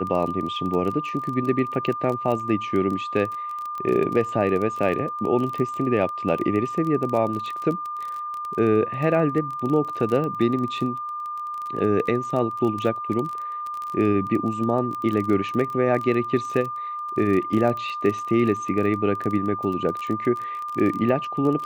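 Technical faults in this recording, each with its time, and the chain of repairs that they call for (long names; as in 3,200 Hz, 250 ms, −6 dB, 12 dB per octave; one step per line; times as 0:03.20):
surface crackle 23 per second −27 dBFS
whistle 1,200 Hz −28 dBFS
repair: click removal
notch filter 1,200 Hz, Q 30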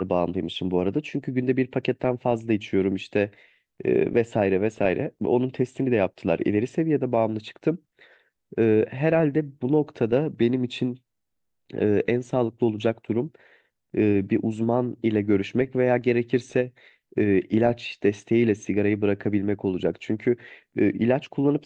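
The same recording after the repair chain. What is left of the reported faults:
none of them is left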